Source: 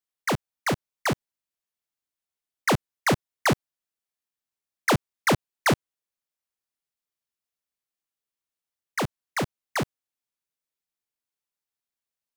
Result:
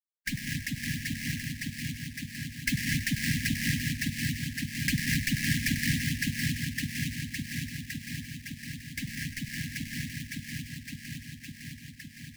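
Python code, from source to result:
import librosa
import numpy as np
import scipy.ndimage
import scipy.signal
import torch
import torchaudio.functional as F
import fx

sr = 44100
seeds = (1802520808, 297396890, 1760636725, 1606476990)

p1 = fx.bin_expand(x, sr, power=3.0)
p2 = p1 + fx.echo_split(p1, sr, split_hz=2000.0, low_ms=560, high_ms=97, feedback_pct=52, wet_db=-3.5, dry=0)
p3 = fx.rev_gated(p2, sr, seeds[0], gate_ms=280, shape='rising', drr_db=-2.5)
p4 = fx.vibrato(p3, sr, rate_hz=1.6, depth_cents=14.0)
p5 = fx.sample_hold(p4, sr, seeds[1], rate_hz=3600.0, jitter_pct=20)
p6 = fx.brickwall_bandstop(p5, sr, low_hz=290.0, high_hz=1600.0)
y = fx.band_squash(p6, sr, depth_pct=70)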